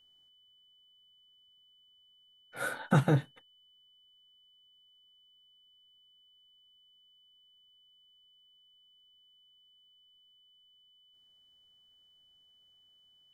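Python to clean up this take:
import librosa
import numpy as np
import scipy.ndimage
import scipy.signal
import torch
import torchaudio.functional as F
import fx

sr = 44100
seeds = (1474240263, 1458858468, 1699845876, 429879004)

y = fx.notch(x, sr, hz=3000.0, q=30.0)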